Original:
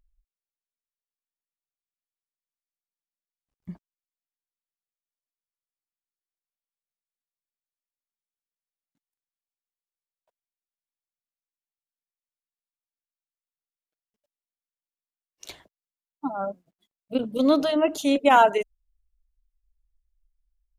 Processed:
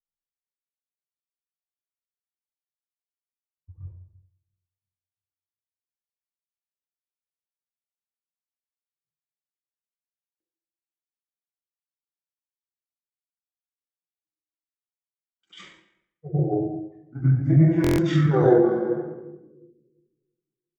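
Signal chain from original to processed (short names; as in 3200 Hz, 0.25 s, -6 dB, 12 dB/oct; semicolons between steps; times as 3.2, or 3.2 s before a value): analogue delay 0.347 s, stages 2048, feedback 44%, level -18.5 dB; dynamic EQ 110 Hz, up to +5 dB, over -44 dBFS, Q 1.8; flange 0.84 Hz, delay 5 ms, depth 8.9 ms, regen -27%; in parallel at -1 dB: level quantiser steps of 19 dB; on the sum: reverb RT60 1.1 s, pre-delay 84 ms, DRR -10.5 dB; compressor 4:1, threshold -5 dBFS, peak gain reduction 14.5 dB; pitch shift -11 st; high shelf 3600 Hz +8.5 dB; resonator 320 Hz, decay 0.54 s, mix 70%; stuck buffer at 10.24/17.82, samples 1024, times 6; three-band expander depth 70%; gain -4 dB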